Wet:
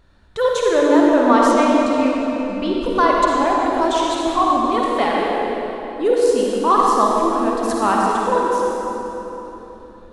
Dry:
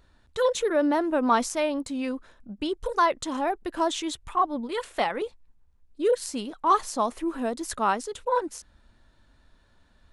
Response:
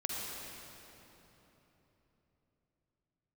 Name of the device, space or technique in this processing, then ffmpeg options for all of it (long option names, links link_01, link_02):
swimming-pool hall: -filter_complex "[1:a]atrim=start_sample=2205[link_01];[0:a][link_01]afir=irnorm=-1:irlink=0,highshelf=frequency=5000:gain=-6,asettb=1/sr,asplit=3[link_02][link_03][link_04];[link_02]atrim=end=1.514[link_05];[link_03]atrim=start=1.51:end=2.81,asetpts=PTS-STARTPTS,afade=type=in:duration=0.004:curve=qsin,afade=type=out:start_time=1.296:duration=0.004:curve=qsin,lowpass=6800[link_06];[link_04]atrim=start=2.806[link_07];[link_05][link_06]acrossfade=duration=0.004:curve1=hsin:curve2=qsin[link_08];[link_08][link_07]acrossfade=duration=0.004:curve1=qsin:curve2=hsin,volume=6dB"